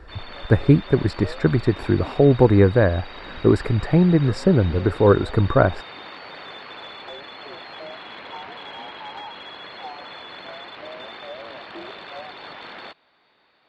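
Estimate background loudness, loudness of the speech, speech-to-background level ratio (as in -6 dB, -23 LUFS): -37.0 LUFS, -18.5 LUFS, 18.5 dB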